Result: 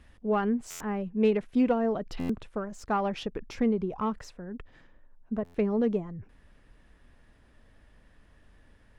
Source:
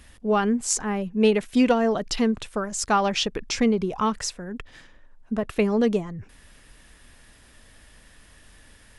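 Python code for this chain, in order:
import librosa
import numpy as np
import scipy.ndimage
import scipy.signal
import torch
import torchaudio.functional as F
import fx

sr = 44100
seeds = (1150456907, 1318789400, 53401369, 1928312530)

y = fx.self_delay(x, sr, depth_ms=0.052)
y = fx.lowpass(y, sr, hz=fx.steps((0.0, 1700.0), (1.37, 1000.0)), slope=6)
y = fx.buffer_glitch(y, sr, at_s=(0.7, 2.19, 5.44), block=512, repeats=8)
y = y * librosa.db_to_amplitude(-4.5)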